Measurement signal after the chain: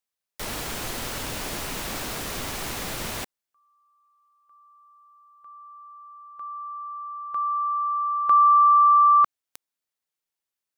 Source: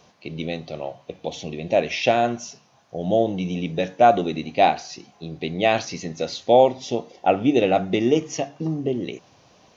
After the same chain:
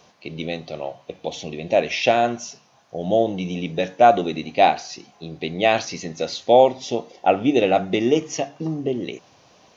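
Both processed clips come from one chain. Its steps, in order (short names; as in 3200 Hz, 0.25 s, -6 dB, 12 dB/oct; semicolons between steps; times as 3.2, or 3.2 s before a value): low shelf 240 Hz -5 dB; gain +2 dB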